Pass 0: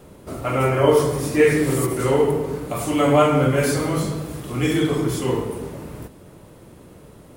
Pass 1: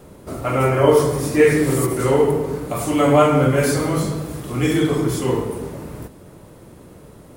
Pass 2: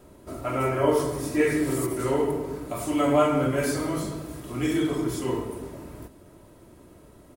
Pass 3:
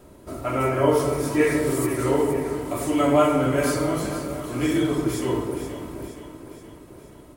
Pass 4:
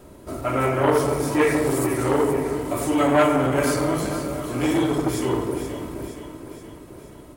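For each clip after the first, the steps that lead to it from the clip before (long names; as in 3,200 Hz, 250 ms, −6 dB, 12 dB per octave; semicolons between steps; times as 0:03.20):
parametric band 2,900 Hz −2.5 dB; level +2 dB
comb filter 3.1 ms, depth 37%; level −8 dB
delay that swaps between a low-pass and a high-pass 236 ms, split 810 Hz, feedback 74%, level −8 dB; level +2.5 dB
saturating transformer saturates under 1,000 Hz; level +3 dB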